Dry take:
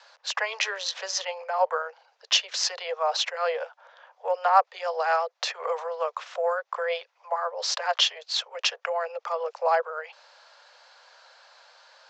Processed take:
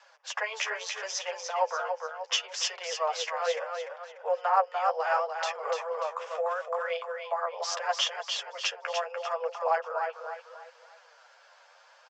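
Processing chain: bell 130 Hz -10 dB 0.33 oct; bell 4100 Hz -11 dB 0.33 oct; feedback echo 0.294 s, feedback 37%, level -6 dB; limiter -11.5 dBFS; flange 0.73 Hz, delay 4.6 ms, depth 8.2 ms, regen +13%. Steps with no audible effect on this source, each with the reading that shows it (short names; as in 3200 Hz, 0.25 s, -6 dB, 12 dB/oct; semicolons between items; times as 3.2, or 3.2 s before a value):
bell 130 Hz: input band starts at 400 Hz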